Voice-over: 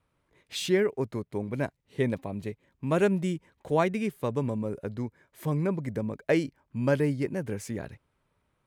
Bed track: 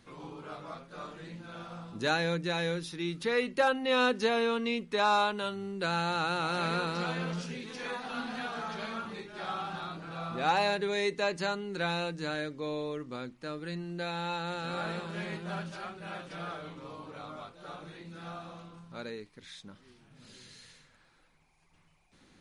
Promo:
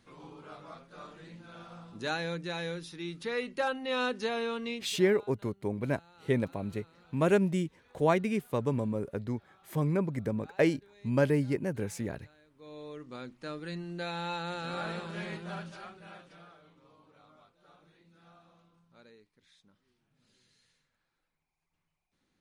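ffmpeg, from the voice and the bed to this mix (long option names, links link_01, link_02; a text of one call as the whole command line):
ffmpeg -i stem1.wav -i stem2.wav -filter_complex "[0:a]adelay=4300,volume=-1dB[link_01];[1:a]volume=22.5dB,afade=type=out:start_time=4.72:duration=0.25:silence=0.0668344,afade=type=in:start_time=12.5:duration=0.91:silence=0.0446684,afade=type=out:start_time=15.28:duration=1.22:silence=0.16788[link_02];[link_01][link_02]amix=inputs=2:normalize=0" out.wav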